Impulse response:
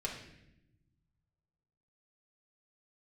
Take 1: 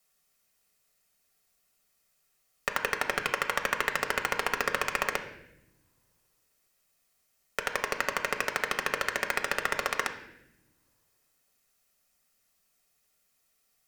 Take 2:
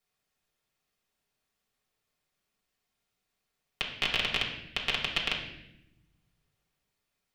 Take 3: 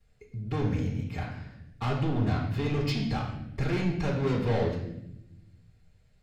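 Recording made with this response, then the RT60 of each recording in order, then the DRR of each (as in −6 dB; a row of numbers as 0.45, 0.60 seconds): 2; non-exponential decay, 0.85 s, 0.80 s; 3.5, −3.5, −13.5 decibels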